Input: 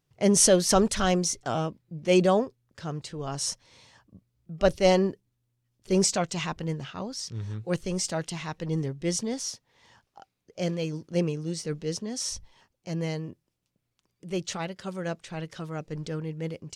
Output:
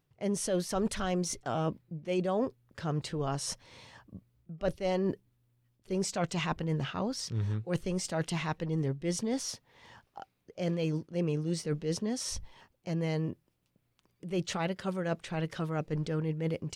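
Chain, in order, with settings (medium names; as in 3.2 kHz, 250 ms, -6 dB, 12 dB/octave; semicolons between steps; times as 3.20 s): reverse; compression 8:1, threshold -32 dBFS, peak gain reduction 17 dB; reverse; peaking EQ 6.4 kHz -7 dB 1.4 oct; trim +4.5 dB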